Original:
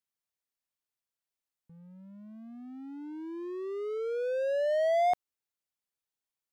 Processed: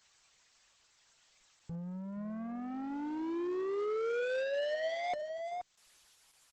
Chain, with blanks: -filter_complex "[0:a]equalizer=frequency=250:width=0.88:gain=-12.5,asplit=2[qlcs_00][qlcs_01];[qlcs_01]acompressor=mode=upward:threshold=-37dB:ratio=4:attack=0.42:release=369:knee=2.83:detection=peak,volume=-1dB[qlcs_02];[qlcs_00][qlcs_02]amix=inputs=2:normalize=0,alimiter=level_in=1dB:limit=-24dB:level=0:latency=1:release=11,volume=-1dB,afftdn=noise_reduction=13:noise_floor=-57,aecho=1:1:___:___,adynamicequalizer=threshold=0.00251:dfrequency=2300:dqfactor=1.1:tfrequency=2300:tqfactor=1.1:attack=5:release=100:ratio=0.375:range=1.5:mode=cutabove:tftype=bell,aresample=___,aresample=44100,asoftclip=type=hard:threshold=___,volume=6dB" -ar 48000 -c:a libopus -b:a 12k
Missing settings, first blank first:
475, 0.178, 32000, -38.5dB